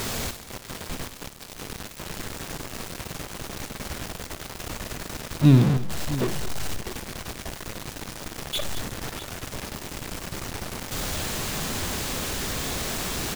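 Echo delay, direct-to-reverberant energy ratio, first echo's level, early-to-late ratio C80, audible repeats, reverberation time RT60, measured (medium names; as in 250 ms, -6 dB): 58 ms, no reverb, -12.0 dB, no reverb, 3, no reverb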